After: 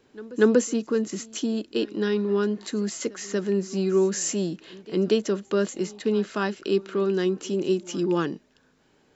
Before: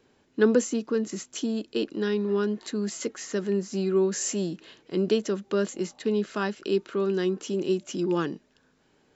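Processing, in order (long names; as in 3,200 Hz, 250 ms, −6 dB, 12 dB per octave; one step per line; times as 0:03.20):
echo ahead of the sound 238 ms −21.5 dB
level +2 dB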